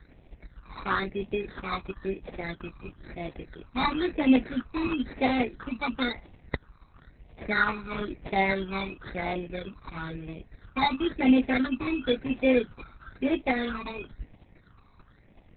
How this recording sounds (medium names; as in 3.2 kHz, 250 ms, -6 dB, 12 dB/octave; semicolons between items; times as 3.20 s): aliases and images of a low sample rate 2.9 kHz, jitter 0%; phasing stages 12, 0.99 Hz, lowest notch 540–1400 Hz; Opus